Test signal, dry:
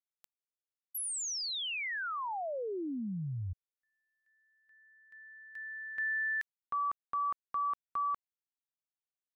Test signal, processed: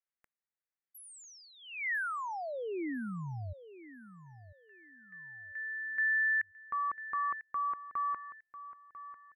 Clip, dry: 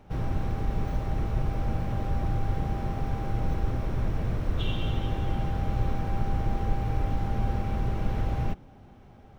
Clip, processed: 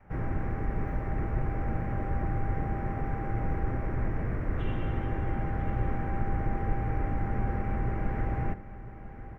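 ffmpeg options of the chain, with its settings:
ffmpeg -i in.wav -af "highshelf=frequency=2700:width_type=q:width=3:gain=-11.5,aecho=1:1:996|1992|2988:0.2|0.0559|0.0156,adynamicequalizer=threshold=0.00316:dfrequency=330:dqfactor=1.6:tfrequency=330:tqfactor=1.6:attack=5:release=100:ratio=0.375:range=2:mode=boostabove:tftype=bell,volume=-3dB" out.wav

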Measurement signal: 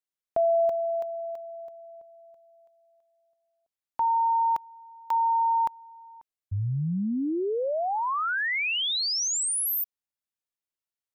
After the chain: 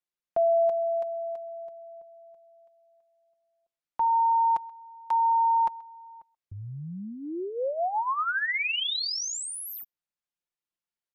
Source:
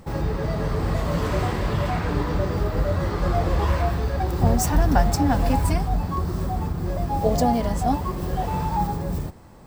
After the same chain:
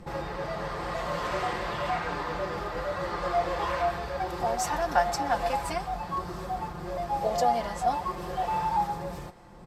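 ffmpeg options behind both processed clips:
ffmpeg -i in.wav -filter_complex "[0:a]highshelf=frequency=7700:gain=-11.5,aecho=1:1:5.7:0.49,acrossover=split=490|6600[link_01][link_02][link_03];[link_01]acompressor=threshold=-35dB:ratio=8:attack=2.1:release=347:knee=6:detection=rms[link_04];[link_02]aecho=1:1:131:0.075[link_05];[link_03]asoftclip=type=tanh:threshold=-31dB[link_06];[link_04][link_05][link_06]amix=inputs=3:normalize=0,aresample=32000,aresample=44100,volume=-1dB" out.wav

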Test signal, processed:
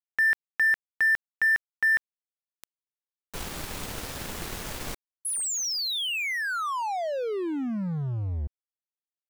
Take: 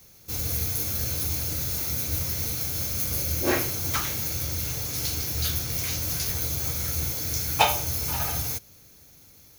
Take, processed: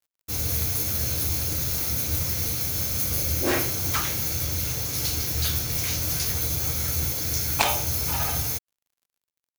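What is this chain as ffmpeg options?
ffmpeg -i in.wav -af "aeval=exprs='sgn(val(0))*max(abs(val(0))-0.00708,0)':channel_layout=same,aeval=exprs='0.596*(cos(1*acos(clip(val(0)/0.596,-1,1)))-cos(1*PI/2))+0.211*(cos(3*acos(clip(val(0)/0.596,-1,1)))-cos(3*PI/2))+0.0422*(cos(7*acos(clip(val(0)/0.596,-1,1)))-cos(7*PI/2))':channel_layout=same,alimiter=level_in=10.5dB:limit=-1dB:release=50:level=0:latency=1,volume=-1dB" out.wav

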